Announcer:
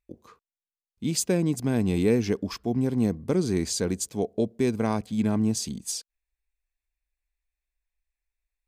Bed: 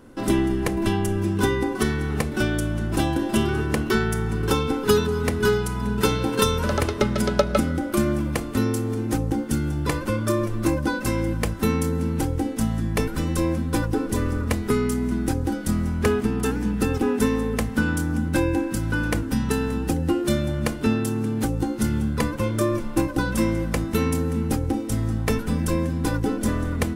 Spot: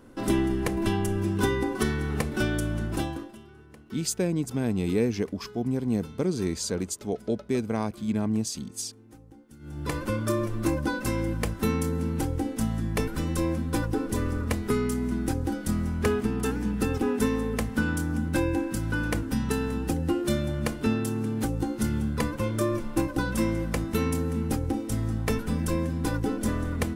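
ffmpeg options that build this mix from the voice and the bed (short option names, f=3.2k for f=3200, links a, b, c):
-filter_complex "[0:a]adelay=2900,volume=-2.5dB[a];[1:a]volume=19.5dB,afade=t=out:st=2.8:d=0.56:silence=0.0668344,afade=t=in:st=9.59:d=0.41:silence=0.0707946[b];[a][b]amix=inputs=2:normalize=0"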